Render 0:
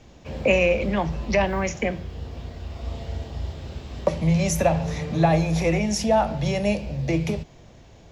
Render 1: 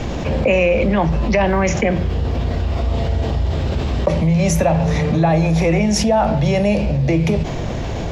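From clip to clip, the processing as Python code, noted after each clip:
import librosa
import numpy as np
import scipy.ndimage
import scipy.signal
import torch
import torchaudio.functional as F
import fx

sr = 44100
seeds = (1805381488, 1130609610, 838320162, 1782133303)

y = fx.high_shelf(x, sr, hz=3700.0, db=-8.0)
y = fx.env_flatten(y, sr, amount_pct=70)
y = y * librosa.db_to_amplitude(2.0)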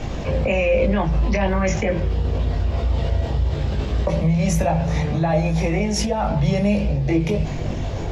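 y = fx.chorus_voices(x, sr, voices=4, hz=0.44, base_ms=20, depth_ms=1.3, mix_pct=45)
y = y * librosa.db_to_amplitude(-1.5)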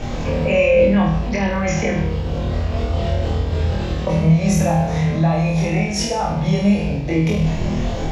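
y = fx.rider(x, sr, range_db=4, speed_s=2.0)
y = fx.room_flutter(y, sr, wall_m=4.3, rt60_s=0.62)
y = y * librosa.db_to_amplitude(-1.0)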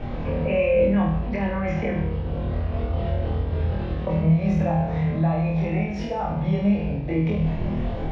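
y = fx.air_absorb(x, sr, metres=360.0)
y = y * librosa.db_to_amplitude(-4.5)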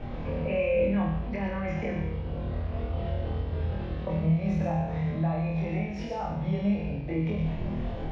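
y = fx.echo_wet_highpass(x, sr, ms=117, feedback_pct=31, hz=2500.0, wet_db=-3.5)
y = y * librosa.db_to_amplitude(-6.0)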